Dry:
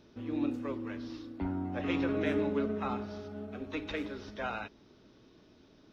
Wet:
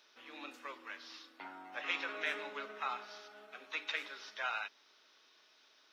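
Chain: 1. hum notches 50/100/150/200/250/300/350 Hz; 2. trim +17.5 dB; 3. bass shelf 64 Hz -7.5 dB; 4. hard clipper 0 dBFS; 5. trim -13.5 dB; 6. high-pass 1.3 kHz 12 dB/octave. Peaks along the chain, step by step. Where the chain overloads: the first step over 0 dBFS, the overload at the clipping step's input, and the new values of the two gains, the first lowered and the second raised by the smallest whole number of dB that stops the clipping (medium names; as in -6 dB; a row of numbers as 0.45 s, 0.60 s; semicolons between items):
-18.5 dBFS, -1.0 dBFS, -1.5 dBFS, -1.5 dBFS, -15.0 dBFS, -20.0 dBFS; nothing clips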